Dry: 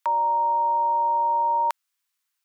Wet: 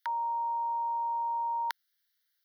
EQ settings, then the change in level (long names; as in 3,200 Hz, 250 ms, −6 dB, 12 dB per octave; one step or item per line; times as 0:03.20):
high-pass filter 1,200 Hz 24 dB per octave
phaser with its sweep stopped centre 1,700 Hz, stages 8
+3.5 dB